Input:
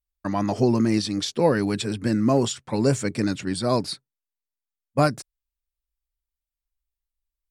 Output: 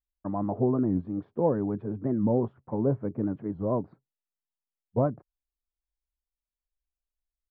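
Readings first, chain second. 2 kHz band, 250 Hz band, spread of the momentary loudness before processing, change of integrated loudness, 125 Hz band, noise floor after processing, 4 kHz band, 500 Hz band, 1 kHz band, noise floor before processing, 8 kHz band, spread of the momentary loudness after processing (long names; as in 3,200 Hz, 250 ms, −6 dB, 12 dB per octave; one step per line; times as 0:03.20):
below −20 dB, −5.0 dB, 7 LU, −5.5 dB, −4.5 dB, below −85 dBFS, below −40 dB, −4.5 dB, −8.0 dB, below −85 dBFS, below −40 dB, 8 LU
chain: low-pass filter 1,000 Hz 24 dB per octave
wow of a warped record 45 rpm, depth 250 cents
level −5 dB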